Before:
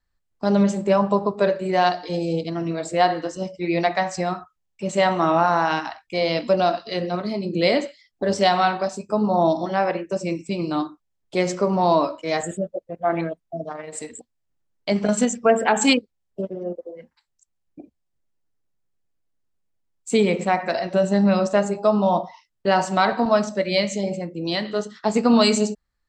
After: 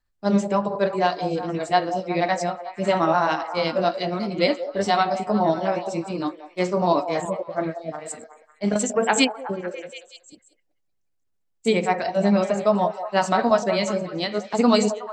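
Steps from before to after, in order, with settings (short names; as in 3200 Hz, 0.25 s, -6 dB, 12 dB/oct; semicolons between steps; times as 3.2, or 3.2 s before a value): granular stretch 0.58×, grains 0.141 s; delay with a stepping band-pass 0.184 s, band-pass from 610 Hz, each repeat 0.7 oct, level -8 dB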